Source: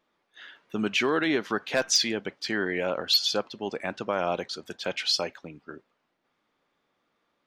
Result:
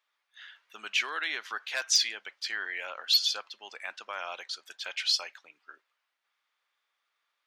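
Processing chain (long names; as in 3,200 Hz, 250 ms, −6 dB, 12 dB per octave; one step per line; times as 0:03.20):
high-pass filter 1,400 Hz 12 dB per octave
level −1 dB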